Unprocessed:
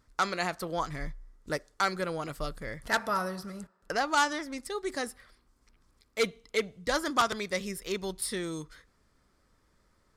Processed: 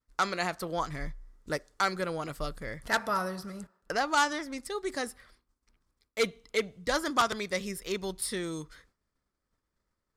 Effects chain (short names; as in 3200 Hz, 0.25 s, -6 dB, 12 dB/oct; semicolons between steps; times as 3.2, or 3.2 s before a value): expander -57 dBFS